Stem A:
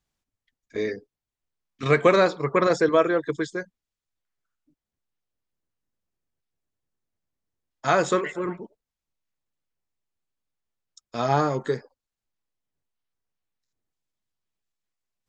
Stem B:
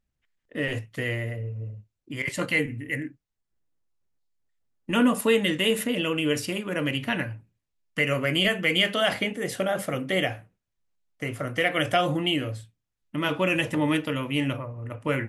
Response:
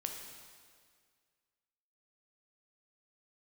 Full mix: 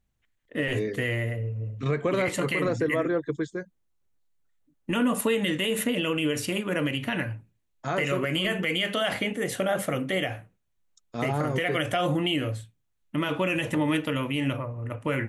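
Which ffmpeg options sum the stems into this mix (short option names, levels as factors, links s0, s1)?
-filter_complex "[0:a]lowshelf=f=400:g=10,volume=0.422[s0];[1:a]volume=1.26[s1];[s0][s1]amix=inputs=2:normalize=0,equalizer=f=5000:t=o:w=0.21:g=-6.5,alimiter=limit=0.15:level=0:latency=1:release=85"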